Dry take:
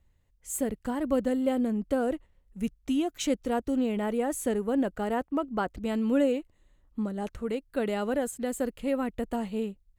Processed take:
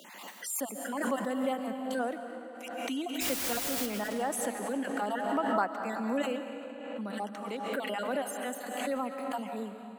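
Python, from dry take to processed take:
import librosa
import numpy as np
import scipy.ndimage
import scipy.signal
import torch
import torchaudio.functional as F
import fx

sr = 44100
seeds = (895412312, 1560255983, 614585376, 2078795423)

y = fx.spec_dropout(x, sr, seeds[0], share_pct=35)
y = scipy.signal.sosfilt(scipy.signal.butter(12, 190.0, 'highpass', fs=sr, output='sos'), y)
y = fx.low_shelf_res(y, sr, hz=580.0, db=-7.0, q=1.5)
y = fx.notch(y, sr, hz=6800.0, q=15.0)
y = fx.quant_dither(y, sr, seeds[1], bits=6, dither='triangular', at=(3.2, 3.85), fade=0.02)
y = fx.rev_freeverb(y, sr, rt60_s=2.9, hf_ratio=0.85, predelay_ms=100, drr_db=6.5)
y = fx.pre_swell(y, sr, db_per_s=36.0)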